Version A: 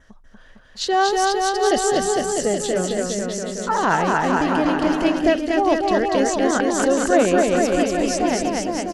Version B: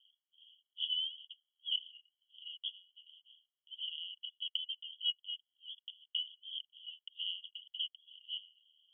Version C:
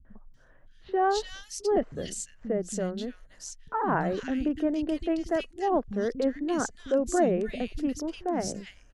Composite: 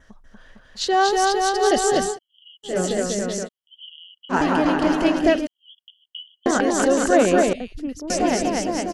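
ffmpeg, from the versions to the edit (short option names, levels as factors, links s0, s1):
-filter_complex "[1:a]asplit=3[s0][s1][s2];[0:a]asplit=5[s3][s4][s5][s6][s7];[s3]atrim=end=2.19[s8];[s0]atrim=start=2.03:end=2.79[s9];[s4]atrim=start=2.63:end=3.49[s10];[s1]atrim=start=3.43:end=4.35[s11];[s5]atrim=start=4.29:end=5.472[s12];[s2]atrim=start=5.468:end=6.462[s13];[s6]atrim=start=6.458:end=7.532[s14];[2:a]atrim=start=7.528:end=8.102[s15];[s7]atrim=start=8.098[s16];[s8][s9]acrossfade=d=0.16:c1=tri:c2=tri[s17];[s17][s10]acrossfade=d=0.16:c1=tri:c2=tri[s18];[s18][s11]acrossfade=d=0.06:c1=tri:c2=tri[s19];[s19][s12]acrossfade=d=0.06:c1=tri:c2=tri[s20];[s20][s13]acrossfade=d=0.004:c1=hsin:c2=hsin[s21];[s21][s14]acrossfade=d=0.004:c1=hsin:c2=hsin[s22];[s22][s15]acrossfade=d=0.004:c1=hsin:c2=hsin[s23];[s23][s16]acrossfade=d=0.004:c1=hsin:c2=hsin"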